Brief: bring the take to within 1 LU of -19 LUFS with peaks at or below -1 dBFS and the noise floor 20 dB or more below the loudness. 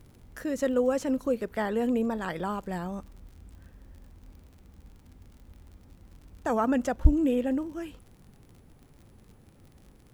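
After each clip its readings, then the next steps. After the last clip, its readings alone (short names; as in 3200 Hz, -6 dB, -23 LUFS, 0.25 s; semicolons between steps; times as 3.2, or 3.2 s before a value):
ticks 46/s; loudness -29.0 LUFS; peak -7.0 dBFS; loudness target -19.0 LUFS
-> de-click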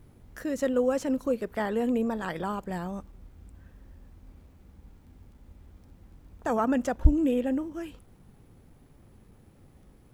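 ticks 1.5/s; loudness -29.0 LUFS; peak -7.0 dBFS; loudness target -19.0 LUFS
-> gain +10 dB; limiter -1 dBFS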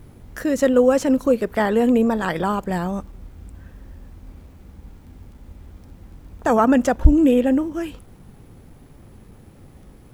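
loudness -19.0 LUFS; peak -1.0 dBFS; noise floor -47 dBFS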